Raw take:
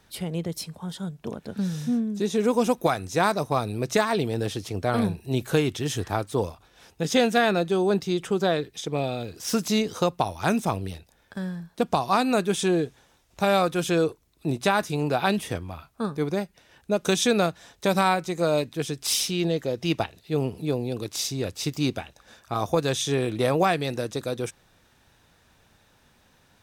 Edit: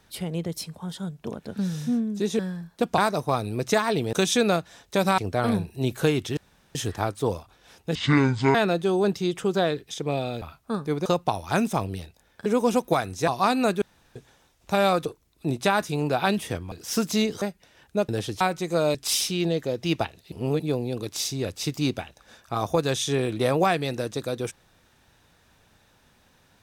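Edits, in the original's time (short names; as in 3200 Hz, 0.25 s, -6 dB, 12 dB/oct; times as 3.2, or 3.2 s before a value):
2.39–3.21 swap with 11.38–11.97
4.36–4.68 swap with 17.03–18.08
5.87 insert room tone 0.38 s
7.07–7.41 speed 57%
9.28–9.98 swap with 15.72–16.36
12.51–12.85 room tone
13.75–14.06 cut
18.62–18.94 cut
20.31–20.59 reverse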